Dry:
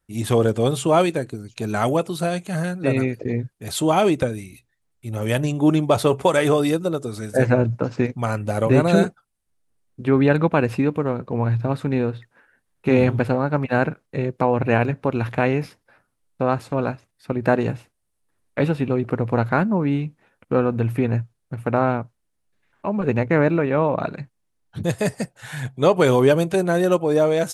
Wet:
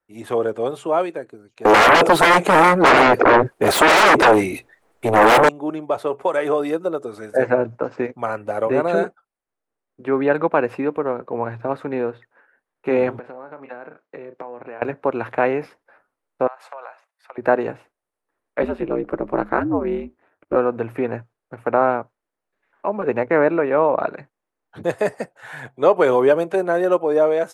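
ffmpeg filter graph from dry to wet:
-filter_complex "[0:a]asettb=1/sr,asplit=3[a][b][c];[a]atrim=end=1.654[d];[b]atrim=start=1.65:end=5.49,asetpts=PTS-STARTPTS,afade=t=in:d=0.004:c=qsin,afade=t=out:st=3.836:d=0.004:c=qsin,equalizer=f=470:w=0.65:g=4.5,acontrast=90,aeval=exprs='0.841*sin(PI/2*6.31*val(0)/0.841)':c=same[e];[c]atrim=start=5.486[f];[d][e]acrossfade=d=0.004:c1=hsin:c2=qsin[g];[g][f]acrossfade=d=0.004:c1=qsin:c2=hsin,asettb=1/sr,asplit=3[h][i][j];[h]atrim=end=13.194[k];[i]atrim=start=13.19:end=14.82,asetpts=PTS-STARTPTS,afade=t=in:d=0.004:c=qsin,afade=t=out:st=1.626:d=0.004:c=qsin,highpass=150,lowpass=6.2k,asplit=2[l][m];[m]adelay=33,volume=-12.5dB[n];[l][n]amix=inputs=2:normalize=0,atrim=end_sample=71883,acompressor=threshold=-30dB:ratio=20:attack=3.2:release=140:knee=1:detection=peak[o];[j]atrim=start=14.816[p];[k][o]acrossfade=d=0.004:c1=hsin:c2=qsin[q];[q][p]acrossfade=d=0.004:c1=qsin:c2=hsin,asettb=1/sr,asplit=3[r][s][t];[r]atrim=end=16.474[u];[s]atrim=start=16.47:end=17.38,asetpts=PTS-STARTPTS,afade=t=in:d=0.004:c=qsin,afade=t=out:st=0.906:d=0.004:c=qsin,highpass=f=670:w=0.5412,highpass=f=670:w=1.3066,acompressor=threshold=-35dB:ratio=16:attack=3.2:release=140:knee=1:detection=peak[v];[t]atrim=start=17.376[w];[u][v]acrossfade=d=0.004:c1=hsin:c2=qsin[x];[x][w]acrossfade=d=0.004:c1=qsin:c2=hsin,asettb=1/sr,asplit=3[y][z][aa];[y]atrim=end=18.624[ab];[z]atrim=start=18.62:end=20.56,asetpts=PTS-STARTPTS,afade=t=in:d=0.004:c=qsin,afade=t=out:st=1.936:d=0.004:c=qsin,equalizer=f=210:t=o:w=0.93:g=7.5,aeval=exprs='val(0)*sin(2*PI*92*n/s)':c=same[ac];[aa]atrim=start=20.556[ad];[ab][ac]acrossfade=d=0.004:c1=hsin:c2=qsin[ae];[ae][ad]acrossfade=d=0.004:c1=qsin:c2=hsin,lowshelf=f=230:g=5,dynaudnorm=f=620:g=3:m=11.5dB,acrossover=split=340 2100:gain=0.0708 1 0.2[af][ag][ah];[af][ag][ah]amix=inputs=3:normalize=0"

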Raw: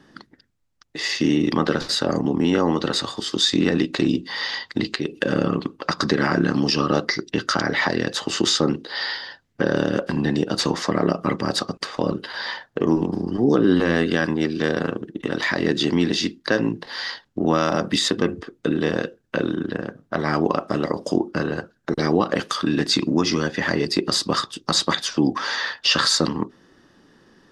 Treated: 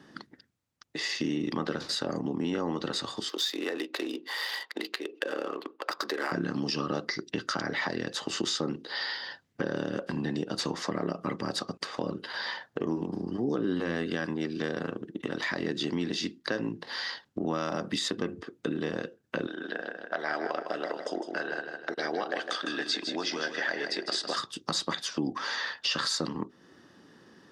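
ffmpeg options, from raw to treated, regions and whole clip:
-filter_complex "[0:a]asettb=1/sr,asplit=3[a][b][c];[a]atrim=end=3.294[d];[b]atrim=start=3.29:end=6.32,asetpts=PTS-STARTPTS,afade=t=in:d=0.004:c=qsin,afade=t=out:st=3.026:d=0.004:c=qsin,adynamicsmooth=sensitivity=6.5:basefreq=2.7k,highpass=f=360:w=0.5412,highpass=f=360:w=1.3066[e];[c]atrim=start=6.316[f];[d][e]acrossfade=d=0.004:c1=hsin:c2=qsin[g];[g][f]acrossfade=d=0.004:c1=qsin:c2=hsin,asettb=1/sr,asplit=3[h][i][j];[h]atrim=end=19.474[k];[i]atrim=start=19.47:end=24.36,asetpts=PTS-STARTPTS,afade=t=in:d=0.004:c=qsin,afade=t=out:st=4.886:d=0.004:c=qsin,highpass=450,equalizer=f=690:t=q:w=4:g=6,equalizer=f=1.1k:t=q:w=4:g=-6,equalizer=f=1.6k:t=q:w=4:g=7,equalizer=f=3.4k:t=q:w=4:g=4,equalizer=f=6.8k:t=q:w=4:g=-4,lowpass=f=8.5k:w=0.5412,lowpass=f=8.5k:w=1.3066,aecho=1:1:156|312|468|624:0.398|0.131|0.0434|0.0143,atrim=end_sample=215649[l];[j]atrim=start=24.356[m];[k][l]acrossfade=d=0.004:c1=hsin:c2=qsin[n];[n][m]acrossfade=d=0.004:c1=qsin:c2=hsin,acompressor=threshold=-33dB:ratio=2,highpass=93,volume=-1.5dB"

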